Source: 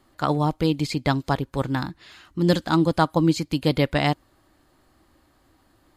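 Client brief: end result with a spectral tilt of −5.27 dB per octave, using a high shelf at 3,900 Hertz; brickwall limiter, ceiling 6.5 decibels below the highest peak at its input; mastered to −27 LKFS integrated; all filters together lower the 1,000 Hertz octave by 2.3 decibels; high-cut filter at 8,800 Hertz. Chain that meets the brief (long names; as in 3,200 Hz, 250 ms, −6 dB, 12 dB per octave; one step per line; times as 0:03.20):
low-pass filter 8,800 Hz
parametric band 1,000 Hz −3.5 dB
high-shelf EQ 3,900 Hz +7 dB
level −2 dB
brickwall limiter −14 dBFS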